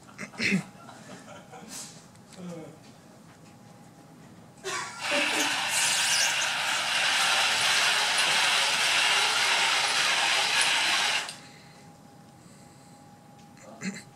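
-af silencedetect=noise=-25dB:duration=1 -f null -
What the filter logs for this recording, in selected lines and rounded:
silence_start: 0.60
silence_end: 4.67 | silence_duration: 4.07
silence_start: 11.29
silence_end: 13.85 | silence_duration: 2.56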